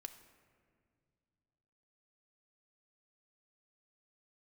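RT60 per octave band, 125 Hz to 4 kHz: 3.3, 2.9, 2.4, 1.9, 1.7, 1.1 seconds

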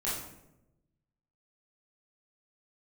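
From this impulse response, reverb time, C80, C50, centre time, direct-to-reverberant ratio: 0.90 s, 5.5 dB, 2.0 dB, 57 ms, −9.0 dB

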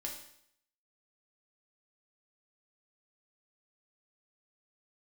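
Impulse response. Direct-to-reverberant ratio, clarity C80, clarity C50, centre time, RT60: −1.0 dB, 9.0 dB, 6.0 dB, 29 ms, 0.70 s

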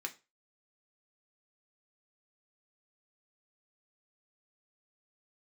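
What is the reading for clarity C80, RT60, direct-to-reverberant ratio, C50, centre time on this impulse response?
24.0 dB, 0.30 s, 3.0 dB, 17.0 dB, 6 ms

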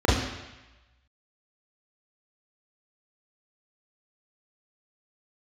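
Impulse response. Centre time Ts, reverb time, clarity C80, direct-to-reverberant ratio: 67 ms, 1.0 s, 5.5 dB, −7.5 dB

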